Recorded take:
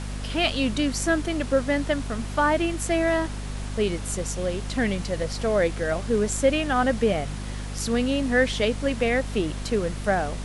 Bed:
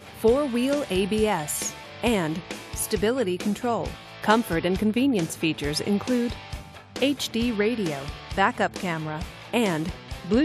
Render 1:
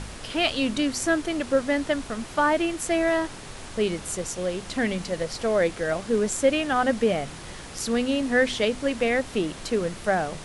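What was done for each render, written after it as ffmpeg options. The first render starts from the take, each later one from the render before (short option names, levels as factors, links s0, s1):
-af "bandreject=f=50:t=h:w=4,bandreject=f=100:t=h:w=4,bandreject=f=150:t=h:w=4,bandreject=f=200:t=h:w=4,bandreject=f=250:t=h:w=4"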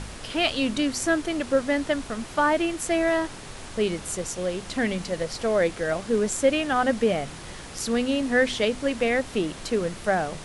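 -af anull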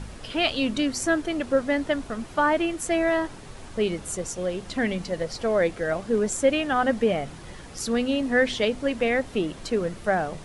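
-af "afftdn=nr=7:nf=-40"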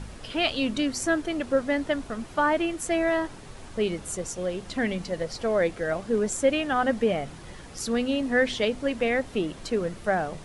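-af "volume=0.841"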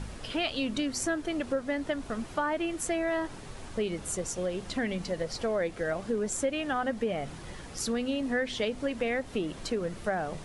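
-af "acompressor=threshold=0.0398:ratio=3"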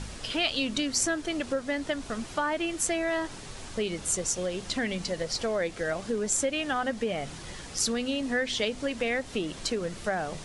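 -af "lowpass=8400,highshelf=f=3100:g=11"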